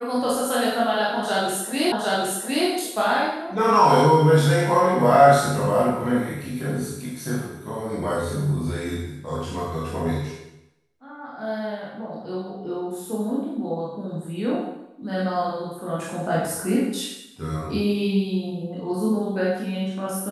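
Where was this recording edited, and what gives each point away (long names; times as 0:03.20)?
0:01.92: the same again, the last 0.76 s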